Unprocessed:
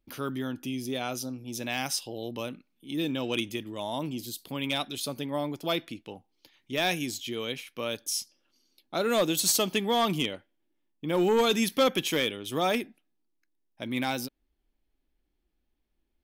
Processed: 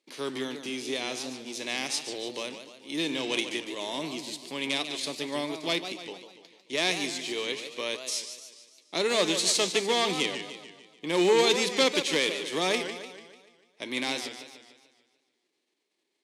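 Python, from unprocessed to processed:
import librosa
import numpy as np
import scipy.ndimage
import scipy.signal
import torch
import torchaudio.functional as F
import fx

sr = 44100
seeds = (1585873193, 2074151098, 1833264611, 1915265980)

y = fx.envelope_flatten(x, sr, power=0.6)
y = fx.cabinet(y, sr, low_hz=190.0, low_slope=24, high_hz=9000.0, hz=(220.0, 410.0, 770.0, 1400.0, 2100.0, 4100.0), db=(-9, 6, -4, -9, 4, 5))
y = fx.echo_warbled(y, sr, ms=147, feedback_pct=52, rate_hz=2.8, cents=190, wet_db=-9.5)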